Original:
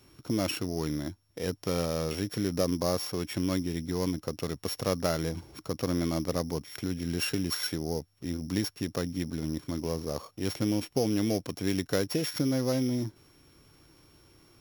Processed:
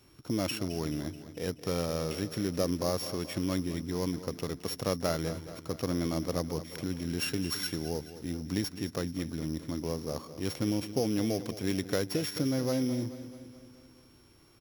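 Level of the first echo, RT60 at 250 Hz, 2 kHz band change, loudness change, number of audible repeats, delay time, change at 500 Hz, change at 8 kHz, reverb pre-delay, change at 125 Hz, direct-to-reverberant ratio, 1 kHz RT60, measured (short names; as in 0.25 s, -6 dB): -13.5 dB, none, -1.5 dB, -2.0 dB, 5, 0.215 s, -1.5 dB, -1.5 dB, none, -2.0 dB, none, none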